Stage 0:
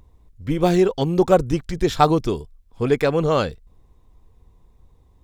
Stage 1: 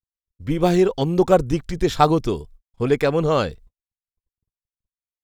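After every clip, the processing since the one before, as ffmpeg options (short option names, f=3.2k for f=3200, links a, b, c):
-af "agate=range=-59dB:threshold=-43dB:ratio=16:detection=peak"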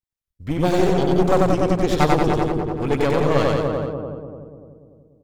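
-filter_complex "[0:a]asplit=2[a][b];[b]adelay=293,lowpass=f=810:p=1,volume=-3.5dB,asplit=2[c][d];[d]adelay=293,lowpass=f=810:p=1,volume=0.52,asplit=2[e][f];[f]adelay=293,lowpass=f=810:p=1,volume=0.52,asplit=2[g][h];[h]adelay=293,lowpass=f=810:p=1,volume=0.52,asplit=2[i][j];[j]adelay=293,lowpass=f=810:p=1,volume=0.52,asplit=2[k][l];[l]adelay=293,lowpass=f=810:p=1,volume=0.52,asplit=2[m][n];[n]adelay=293,lowpass=f=810:p=1,volume=0.52[o];[c][e][g][i][k][m][o]amix=inputs=7:normalize=0[p];[a][p]amix=inputs=2:normalize=0,aeval=exprs='clip(val(0),-1,0.0631)':c=same,asplit=2[q][r];[r]aecho=0:1:93.29|180.8:0.794|0.501[s];[q][s]amix=inputs=2:normalize=0,volume=-1dB"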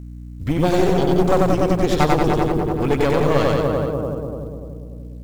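-af "acompressor=threshold=-30dB:ratio=1.5,aeval=exprs='val(0)+0.01*(sin(2*PI*60*n/s)+sin(2*PI*2*60*n/s)/2+sin(2*PI*3*60*n/s)/3+sin(2*PI*4*60*n/s)/4+sin(2*PI*5*60*n/s)/5)':c=same,acrusher=bits=9:mode=log:mix=0:aa=0.000001,volume=7dB"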